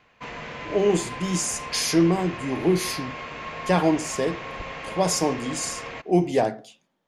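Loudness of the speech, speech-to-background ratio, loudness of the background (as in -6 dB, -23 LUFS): -24.5 LUFS, 10.5 dB, -35.0 LUFS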